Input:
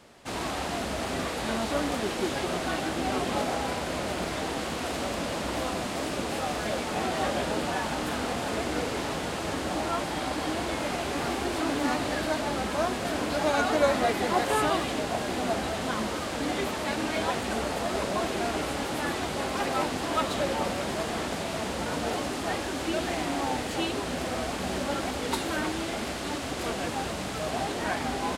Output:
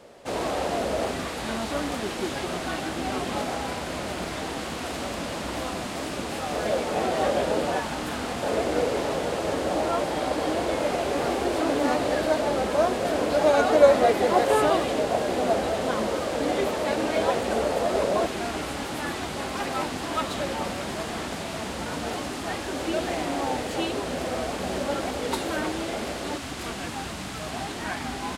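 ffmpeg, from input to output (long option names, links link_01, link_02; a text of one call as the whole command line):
ffmpeg -i in.wav -af "asetnsamples=nb_out_samples=441:pad=0,asendcmd='1.11 equalizer g -1;6.52 equalizer g 8;7.8 equalizer g -0.5;8.43 equalizer g 9.5;18.26 equalizer g -2;22.68 equalizer g 4.5;26.37 equalizer g -6.5',equalizer=frequency=520:width_type=o:width=0.99:gain=10.5" out.wav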